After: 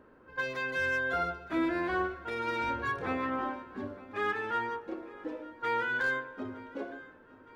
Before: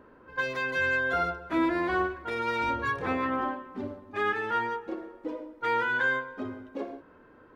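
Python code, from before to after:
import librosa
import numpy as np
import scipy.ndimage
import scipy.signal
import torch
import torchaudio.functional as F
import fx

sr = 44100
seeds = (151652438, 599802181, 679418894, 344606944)

y = fx.notch(x, sr, hz=1000.0, q=21.0)
y = fx.echo_feedback(y, sr, ms=915, feedback_pct=53, wet_db=-20.0)
y = fx.slew_limit(y, sr, full_power_hz=120.0)
y = y * librosa.db_to_amplitude(-3.5)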